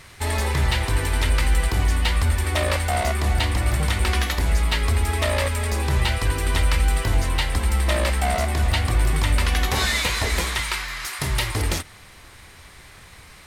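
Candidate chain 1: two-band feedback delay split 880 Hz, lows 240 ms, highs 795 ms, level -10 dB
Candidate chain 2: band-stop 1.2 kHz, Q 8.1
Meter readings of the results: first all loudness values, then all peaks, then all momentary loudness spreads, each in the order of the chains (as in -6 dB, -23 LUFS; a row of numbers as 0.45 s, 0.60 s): -22.0 LUFS, -22.5 LUFS; -8.0 dBFS, -9.5 dBFS; 7 LU, 3 LU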